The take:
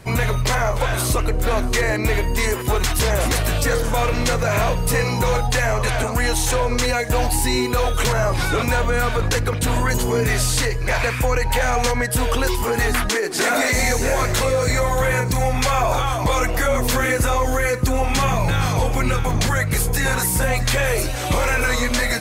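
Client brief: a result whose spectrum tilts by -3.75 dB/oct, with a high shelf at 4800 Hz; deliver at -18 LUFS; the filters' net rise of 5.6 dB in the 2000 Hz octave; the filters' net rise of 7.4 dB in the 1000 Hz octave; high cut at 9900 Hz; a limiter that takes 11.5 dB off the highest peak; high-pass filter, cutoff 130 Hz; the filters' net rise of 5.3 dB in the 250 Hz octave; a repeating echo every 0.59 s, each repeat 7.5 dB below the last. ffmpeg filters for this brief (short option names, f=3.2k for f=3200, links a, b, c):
-af "highpass=130,lowpass=9.9k,equalizer=f=250:t=o:g=6.5,equalizer=f=1k:t=o:g=8,equalizer=f=2k:t=o:g=3.5,highshelf=f=4.8k:g=4,alimiter=limit=-14dB:level=0:latency=1,aecho=1:1:590|1180|1770|2360|2950:0.422|0.177|0.0744|0.0312|0.0131,volume=3dB"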